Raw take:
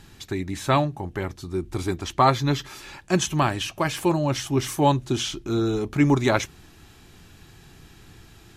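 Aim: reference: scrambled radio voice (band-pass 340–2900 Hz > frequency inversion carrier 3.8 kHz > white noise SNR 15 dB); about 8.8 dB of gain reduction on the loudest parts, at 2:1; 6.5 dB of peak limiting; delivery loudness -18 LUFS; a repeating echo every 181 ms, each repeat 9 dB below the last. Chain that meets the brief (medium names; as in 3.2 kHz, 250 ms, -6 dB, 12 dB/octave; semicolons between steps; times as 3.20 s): compression 2:1, threshold -30 dBFS; peak limiter -21 dBFS; band-pass 340–2900 Hz; feedback delay 181 ms, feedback 35%, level -9 dB; frequency inversion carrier 3.8 kHz; white noise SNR 15 dB; trim +14.5 dB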